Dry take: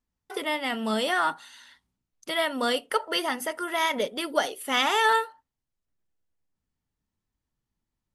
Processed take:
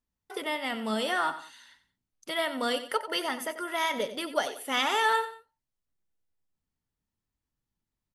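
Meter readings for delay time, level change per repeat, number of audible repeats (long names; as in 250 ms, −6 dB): 91 ms, −9.5 dB, 2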